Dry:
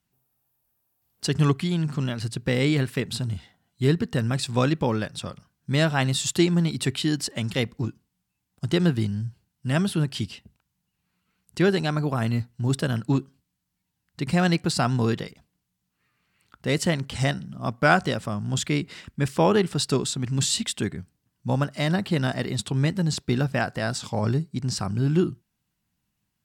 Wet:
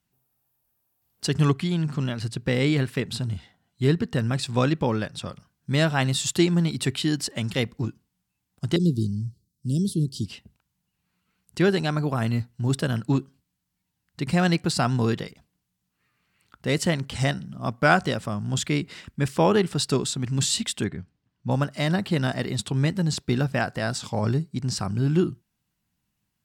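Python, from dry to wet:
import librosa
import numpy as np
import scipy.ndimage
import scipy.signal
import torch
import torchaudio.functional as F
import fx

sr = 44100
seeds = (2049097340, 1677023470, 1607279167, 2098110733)

y = fx.high_shelf(x, sr, hz=8600.0, db=-5.0, at=(1.52, 5.29))
y = fx.cheby2_bandstop(y, sr, low_hz=780.0, high_hz=2200.0, order=4, stop_db=50, at=(8.76, 10.26))
y = fx.lowpass(y, sr, hz=4200.0, slope=12, at=(20.84, 21.51))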